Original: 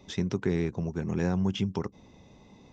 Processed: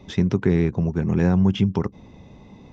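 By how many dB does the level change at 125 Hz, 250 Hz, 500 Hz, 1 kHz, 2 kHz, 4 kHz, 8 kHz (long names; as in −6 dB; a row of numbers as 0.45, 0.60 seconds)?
+10.0 dB, +9.0 dB, +7.0 dB, +6.5 dB, +6.0 dB, +3.5 dB, can't be measured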